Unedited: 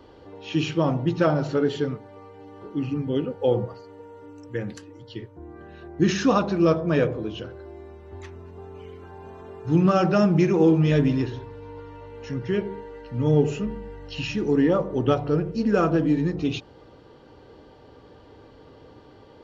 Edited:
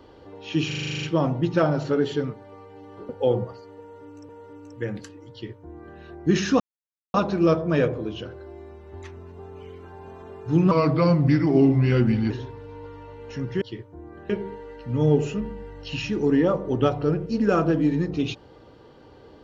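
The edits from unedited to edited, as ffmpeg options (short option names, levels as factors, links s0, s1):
-filter_complex "[0:a]asplit=17[s0][s1][s2][s3][s4][s5][s6][s7][s8][s9][s10][s11][s12][s13][s14][s15][s16];[s0]atrim=end=0.712[s17];[s1]atrim=start=0.668:end=0.712[s18];[s2]atrim=start=0.668:end=0.712[s19];[s3]atrim=start=0.668:end=0.712[s20];[s4]atrim=start=0.668:end=0.712[s21];[s5]atrim=start=0.668:end=0.712[s22];[s6]atrim=start=0.668:end=0.712[s23];[s7]atrim=start=0.668:end=0.712[s24];[s8]atrim=start=0.668:end=0.712[s25];[s9]atrim=start=0.668:end=2.732[s26];[s10]atrim=start=3.298:end=4.502[s27];[s11]atrim=start=4.018:end=6.33,asetpts=PTS-STARTPTS,afade=t=out:st=2.308:d=0.004:c=hsin,apad=pad_dur=0.54[s28];[s12]atrim=start=6.33:end=9.904,asetpts=PTS-STARTPTS,afade=t=in:d=0.004:c=hsin[s29];[s13]atrim=start=9.9:end=11.24,asetpts=PTS-STARTPTS,asetrate=37044,aresample=44100[s30];[s14]atrim=start=11.236:end=12.552[s31];[s15]atrim=start=5.048:end=5.732[s32];[s16]atrim=start=12.548[s33];[s17][s18]acrossfade=d=0.004:c1=hsin:c2=hsin[s34];[s34][s19]acrossfade=d=0.004:c1=hsin:c2=hsin[s35];[s35][s20]acrossfade=d=0.004:c1=hsin:c2=hsin[s36];[s36][s21]acrossfade=d=0.004:c1=hsin:c2=hsin[s37];[s37][s22]acrossfade=d=0.004:c1=hsin:c2=hsin[s38];[s38][s23]acrossfade=d=0.004:c1=hsin:c2=hsin[s39];[s39][s24]acrossfade=d=0.004:c1=hsin:c2=hsin[s40];[s40][s25]acrossfade=d=0.004:c1=hsin:c2=hsin[s41];[s41][s26]acrossfade=d=0.004:c1=hsin:c2=hsin[s42];[s42][s27]acrossfade=d=0.004:c1=hsin:c2=hsin[s43];[s28][s29]concat=n=2:v=0:a=1[s44];[s43][s44]acrossfade=d=0.004:c1=hsin:c2=hsin[s45];[s45][s30]acrossfade=d=0.004:c1=hsin:c2=hsin[s46];[s46][s31]acrossfade=d=0.004:c1=hsin:c2=hsin[s47];[s47][s32]acrossfade=d=0.004:c1=hsin:c2=hsin[s48];[s48][s33]acrossfade=d=0.004:c1=hsin:c2=hsin"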